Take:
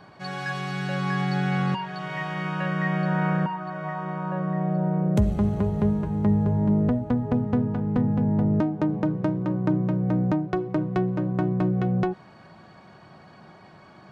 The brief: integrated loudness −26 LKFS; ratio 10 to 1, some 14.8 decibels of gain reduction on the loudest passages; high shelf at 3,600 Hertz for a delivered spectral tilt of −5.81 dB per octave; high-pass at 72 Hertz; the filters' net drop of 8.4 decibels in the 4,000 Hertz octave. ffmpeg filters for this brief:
ffmpeg -i in.wav -af "highpass=72,highshelf=frequency=3600:gain=-8.5,equalizer=frequency=4000:width_type=o:gain=-6.5,acompressor=threshold=-33dB:ratio=10,volume=11dB" out.wav

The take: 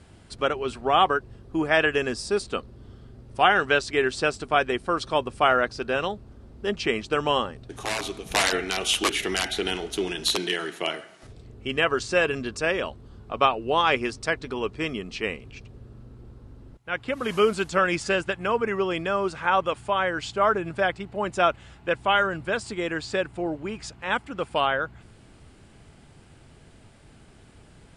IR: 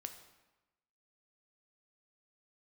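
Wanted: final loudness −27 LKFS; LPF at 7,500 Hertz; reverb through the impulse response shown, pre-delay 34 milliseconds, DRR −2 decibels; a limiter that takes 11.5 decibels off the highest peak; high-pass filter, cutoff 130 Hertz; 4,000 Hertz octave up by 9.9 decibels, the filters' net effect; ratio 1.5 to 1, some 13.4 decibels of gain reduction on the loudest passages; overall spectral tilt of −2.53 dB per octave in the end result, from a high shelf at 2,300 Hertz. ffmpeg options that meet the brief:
-filter_complex "[0:a]highpass=130,lowpass=7500,highshelf=frequency=2300:gain=5.5,equalizer=frequency=4000:width_type=o:gain=8.5,acompressor=threshold=-48dB:ratio=1.5,alimiter=limit=-22dB:level=0:latency=1,asplit=2[link_01][link_02];[1:a]atrim=start_sample=2205,adelay=34[link_03];[link_02][link_03]afir=irnorm=-1:irlink=0,volume=5.5dB[link_04];[link_01][link_04]amix=inputs=2:normalize=0,volume=4dB"

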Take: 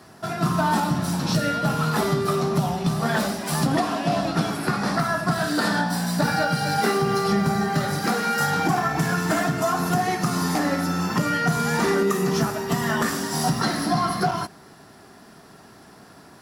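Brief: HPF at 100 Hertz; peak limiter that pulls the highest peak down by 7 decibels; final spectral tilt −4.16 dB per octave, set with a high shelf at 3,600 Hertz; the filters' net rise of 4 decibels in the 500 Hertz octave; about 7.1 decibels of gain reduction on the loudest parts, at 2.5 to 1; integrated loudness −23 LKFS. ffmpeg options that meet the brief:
ffmpeg -i in.wav -af "highpass=100,equalizer=frequency=500:width_type=o:gain=5.5,highshelf=frequency=3600:gain=6.5,acompressor=threshold=-26dB:ratio=2.5,volume=6dB,alimiter=limit=-14dB:level=0:latency=1" out.wav

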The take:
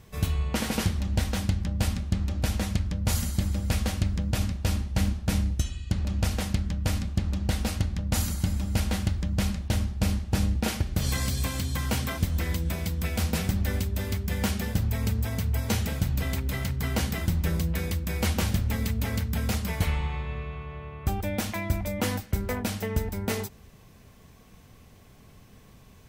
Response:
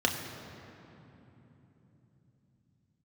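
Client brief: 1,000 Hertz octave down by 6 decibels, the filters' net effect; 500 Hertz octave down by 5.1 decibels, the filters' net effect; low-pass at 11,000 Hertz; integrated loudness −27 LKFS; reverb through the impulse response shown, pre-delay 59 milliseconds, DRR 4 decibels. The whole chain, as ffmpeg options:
-filter_complex "[0:a]lowpass=11000,equalizer=frequency=500:width_type=o:gain=-4.5,equalizer=frequency=1000:width_type=o:gain=-6.5,asplit=2[link_01][link_02];[1:a]atrim=start_sample=2205,adelay=59[link_03];[link_02][link_03]afir=irnorm=-1:irlink=0,volume=-14.5dB[link_04];[link_01][link_04]amix=inputs=2:normalize=0"

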